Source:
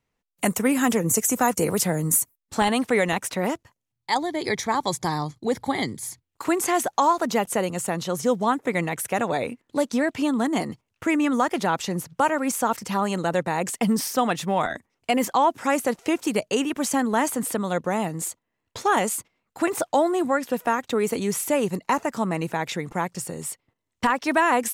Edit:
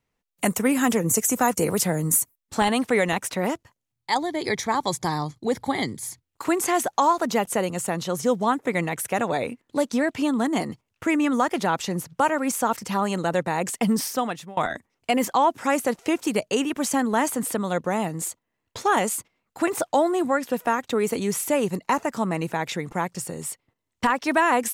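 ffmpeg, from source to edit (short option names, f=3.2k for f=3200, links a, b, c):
-filter_complex "[0:a]asplit=2[a][b];[a]atrim=end=14.57,asetpts=PTS-STARTPTS,afade=t=out:st=14.03:d=0.54:silence=0.0707946[c];[b]atrim=start=14.57,asetpts=PTS-STARTPTS,afade=t=in:d=0.004:c=hsin:silence=0.0707946[d];[c][d]concat=n=2:v=0:a=1"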